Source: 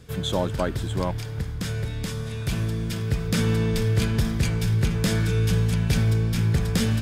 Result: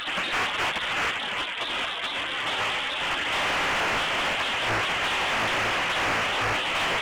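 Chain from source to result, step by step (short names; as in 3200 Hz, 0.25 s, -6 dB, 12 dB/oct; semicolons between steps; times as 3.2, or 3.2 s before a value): delta modulation 16 kbps, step -24 dBFS; HPF 550 Hz 6 dB/oct; spectral gate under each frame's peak -15 dB weak; overdrive pedal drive 39 dB, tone 2300 Hz, clips at -11 dBFS; in parallel at -11 dB: hard clip -25.5 dBFS, distortion -10 dB; on the sum: gain -6 dB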